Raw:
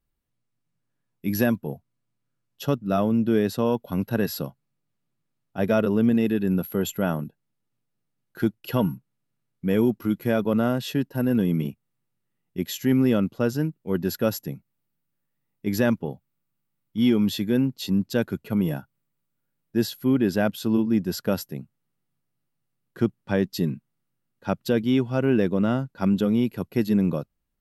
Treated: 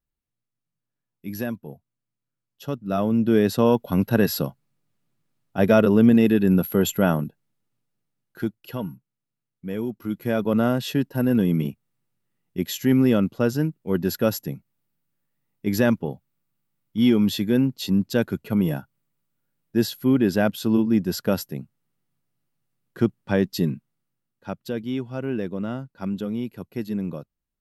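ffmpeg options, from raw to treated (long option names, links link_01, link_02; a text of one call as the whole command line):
ffmpeg -i in.wav -af "volume=14.5dB,afade=type=in:start_time=2.63:duration=1.02:silence=0.251189,afade=type=out:start_time=7.05:duration=1.73:silence=0.237137,afade=type=in:start_time=9.91:duration=0.71:silence=0.334965,afade=type=out:start_time=23.64:duration=0.89:silence=0.375837" out.wav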